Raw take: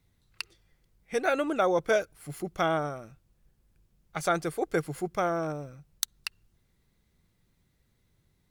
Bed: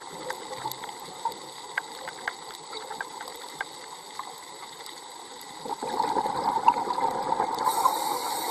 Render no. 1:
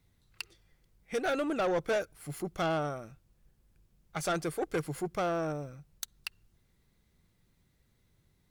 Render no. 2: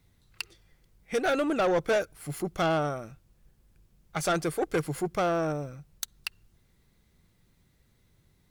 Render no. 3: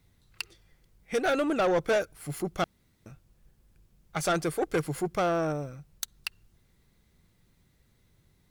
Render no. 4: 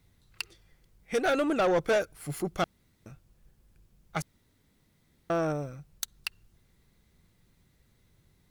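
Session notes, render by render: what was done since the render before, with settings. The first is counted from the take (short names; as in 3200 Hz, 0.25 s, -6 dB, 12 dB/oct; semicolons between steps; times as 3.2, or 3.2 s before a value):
soft clip -25 dBFS, distortion -10 dB
gain +4.5 dB
2.64–3.06 room tone
4.22–5.3 room tone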